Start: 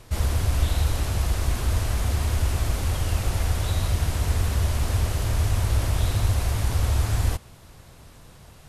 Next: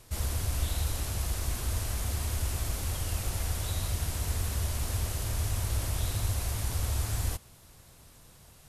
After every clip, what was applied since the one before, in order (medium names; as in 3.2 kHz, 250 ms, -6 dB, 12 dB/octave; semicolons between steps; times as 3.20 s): treble shelf 5.2 kHz +10.5 dB; trim -8.5 dB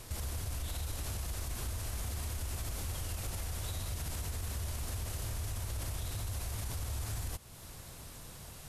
peak limiter -27 dBFS, peak gain reduction 9.5 dB; compression 2:1, threshold -49 dBFS, peak gain reduction 9.5 dB; trim +6.5 dB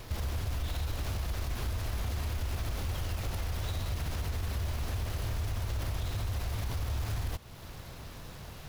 median filter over 5 samples; trim +5 dB